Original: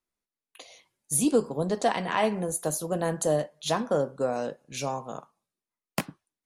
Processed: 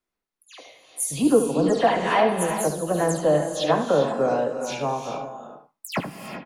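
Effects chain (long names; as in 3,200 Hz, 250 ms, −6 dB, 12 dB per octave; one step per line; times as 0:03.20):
every frequency bin delayed by itself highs early, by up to 131 ms
bass and treble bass −3 dB, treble −6 dB
on a send: single-tap delay 73 ms −9 dB
on the sum: reverb whose tail is shaped and stops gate 430 ms rising, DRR 7 dB
level +5.5 dB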